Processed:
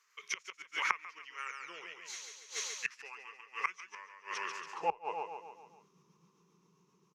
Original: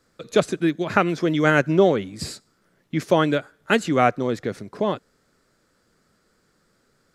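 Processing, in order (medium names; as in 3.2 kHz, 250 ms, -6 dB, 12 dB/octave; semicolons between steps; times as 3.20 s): rotating-head pitch shifter -3 st; Doppler pass-by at 2.16 s, 20 m/s, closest 5.2 m; high-pass sweep 1.7 kHz -> 180 Hz, 4.49–5.67 s; painted sound fall, 1.38–2.32 s, 410–10000 Hz -56 dBFS; feedback delay 141 ms, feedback 51%, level -5 dB; inverted gate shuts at -34 dBFS, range -25 dB; rippled EQ curve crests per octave 0.78, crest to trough 12 dB; trim +14 dB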